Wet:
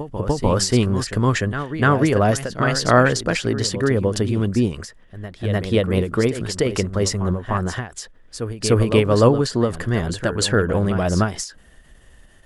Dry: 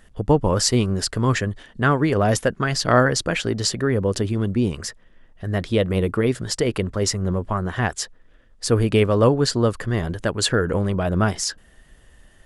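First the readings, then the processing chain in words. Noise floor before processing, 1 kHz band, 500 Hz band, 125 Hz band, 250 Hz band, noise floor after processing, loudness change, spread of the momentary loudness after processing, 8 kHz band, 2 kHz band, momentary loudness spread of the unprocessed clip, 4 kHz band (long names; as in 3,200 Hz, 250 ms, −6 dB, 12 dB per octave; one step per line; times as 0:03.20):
−53 dBFS, +1.5 dB, +1.5 dB, +1.5 dB, +2.0 dB, −49 dBFS, +1.5 dB, 14 LU, −1.0 dB, +1.5 dB, 8 LU, −0.5 dB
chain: backwards echo 299 ms −10.5 dB
every ending faded ahead of time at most 160 dB per second
level +2 dB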